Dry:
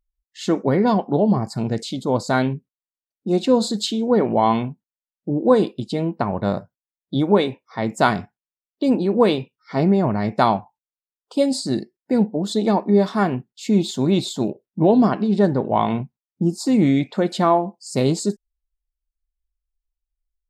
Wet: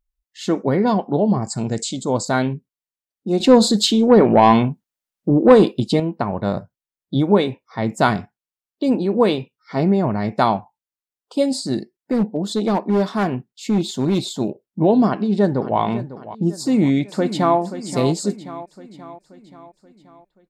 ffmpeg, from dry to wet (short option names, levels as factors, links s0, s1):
-filter_complex "[0:a]asettb=1/sr,asplit=3[s0][s1][s2];[s0]atrim=end=1.424[s3];[s1]atrim=start=1.42:end=2.25,asetpts=PTS-STARTPTS,afade=t=in:d=0.004:c=qsin,afade=t=out:st=0.826:d=0.004:c=qsin,lowpass=f=7600:t=q:w=5[s4];[s2]atrim=start=2.246[s5];[s3][s4]acrossfade=d=0.004:c1=hsin:c2=qsin[s6];[s6][s5]acrossfade=d=0.004:c1=qsin:c2=hsin,asettb=1/sr,asplit=3[s7][s8][s9];[s7]atrim=end=3.404[s10];[s8]atrim=start=3.4:end=6,asetpts=PTS-STARTPTS,afade=t=in:d=0.004:c=qsin,afade=t=out:st=2.596:d=0.004:c=qsin,acontrast=88[s11];[s9]atrim=start=5.996[s12];[s10][s11]acrossfade=d=0.004:c1=hsin:c2=qsin[s13];[s13][s12]acrossfade=d=0.004:c1=qsin:c2=hsin,asettb=1/sr,asplit=3[s14][s15][s16];[s14]atrim=end=6.554[s17];[s15]atrim=start=6.55:end=8.17,asetpts=PTS-STARTPTS,afade=t=in:d=0.004:c=qsin,afade=t=out:st=1.616:d=0.004:c=qsin,lowshelf=f=140:g=7[s18];[s16]atrim=start=8.166[s19];[s17][s18]acrossfade=d=0.004:c1=hsin:c2=qsin[s20];[s20][s19]acrossfade=d=0.004:c1=qsin:c2=hsin,asplit=3[s21][s22][s23];[s21]afade=t=out:st=11.73:d=0.02[s24];[s22]asoftclip=type=hard:threshold=0.224,afade=t=in:st=11.73:d=0.02,afade=t=out:st=14.29:d=0.02[s25];[s23]afade=t=in:st=14.29:d=0.02[s26];[s24][s25][s26]amix=inputs=3:normalize=0,asplit=2[s27][s28];[s28]afade=t=in:st=15.06:d=0.01,afade=t=out:st=15.79:d=0.01,aecho=0:1:550|1100|1650|2200|2750:0.188365|0.0941825|0.0470912|0.0235456|0.0117728[s29];[s27][s29]amix=inputs=2:normalize=0,asplit=2[s30][s31];[s31]afade=t=in:st=16.55:d=0.01,afade=t=out:st=17.59:d=0.01,aecho=0:1:530|1060|1590|2120|2650|3180:0.266073|0.14634|0.0804869|0.0442678|0.0243473|0.013391[s32];[s30][s32]amix=inputs=2:normalize=0"